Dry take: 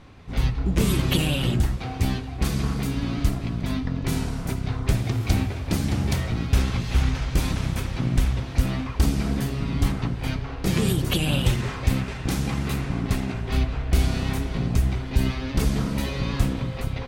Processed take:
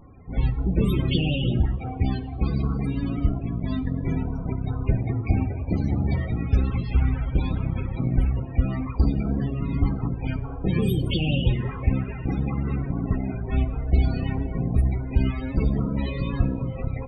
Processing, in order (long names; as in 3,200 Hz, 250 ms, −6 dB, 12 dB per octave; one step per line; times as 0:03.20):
0:12.41–0:13.53: phase distortion by the signal itself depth 0.26 ms
spectral peaks only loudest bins 32
coupled-rooms reverb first 0.73 s, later 2.7 s, from −18 dB, DRR 16 dB